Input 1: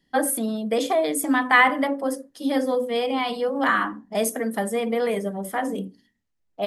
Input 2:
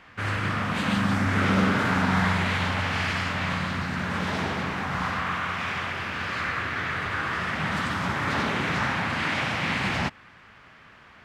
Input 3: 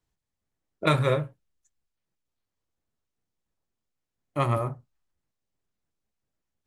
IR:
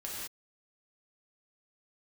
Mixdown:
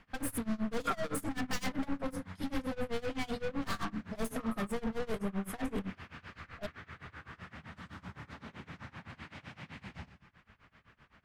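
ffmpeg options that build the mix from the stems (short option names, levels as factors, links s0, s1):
-filter_complex "[0:a]aecho=1:1:4.4:0.56,aeval=exprs='0.141*(abs(mod(val(0)/0.141+3,4)-2)-1)':c=same,aeval=exprs='(tanh(35.5*val(0)+0.25)-tanh(0.25))/35.5':c=same,volume=0.708[s0];[1:a]bandreject=f=50:t=h:w=6,bandreject=f=100:t=h:w=6,acompressor=threshold=0.0178:ratio=6,volume=0.266,asplit=2[s1][s2];[s2]volume=0.299[s3];[2:a]bandpass=f=1400:t=q:w=3:csg=0,volume=0.531[s4];[3:a]atrim=start_sample=2205[s5];[s3][s5]afir=irnorm=-1:irlink=0[s6];[s0][s1][s4][s6]amix=inputs=4:normalize=0,lowshelf=f=170:g=11.5,tremolo=f=7.8:d=0.94"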